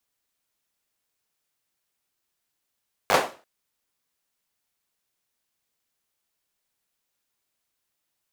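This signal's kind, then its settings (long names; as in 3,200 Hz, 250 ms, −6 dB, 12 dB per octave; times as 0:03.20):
synth clap length 0.34 s, bursts 5, apart 10 ms, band 630 Hz, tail 0.35 s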